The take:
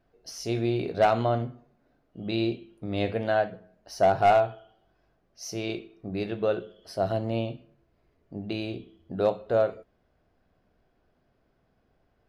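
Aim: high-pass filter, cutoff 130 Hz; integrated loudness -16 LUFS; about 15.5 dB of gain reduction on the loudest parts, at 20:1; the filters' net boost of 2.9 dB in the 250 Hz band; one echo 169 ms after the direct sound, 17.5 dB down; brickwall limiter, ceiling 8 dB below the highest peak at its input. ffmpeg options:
-af "highpass=130,equalizer=f=250:t=o:g=4.5,acompressor=threshold=0.0282:ratio=20,alimiter=level_in=1.41:limit=0.0631:level=0:latency=1,volume=0.708,aecho=1:1:169:0.133,volume=14.1"

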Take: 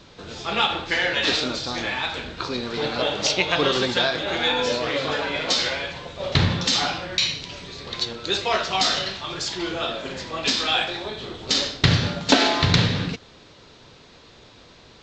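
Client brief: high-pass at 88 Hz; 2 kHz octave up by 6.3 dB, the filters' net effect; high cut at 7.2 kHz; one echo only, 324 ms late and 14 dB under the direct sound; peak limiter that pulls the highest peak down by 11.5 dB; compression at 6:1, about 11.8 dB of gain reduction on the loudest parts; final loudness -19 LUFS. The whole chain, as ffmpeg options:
-af "highpass=88,lowpass=7200,equalizer=f=2000:t=o:g=8,acompressor=threshold=0.0708:ratio=6,alimiter=limit=0.119:level=0:latency=1,aecho=1:1:324:0.2,volume=2.82"

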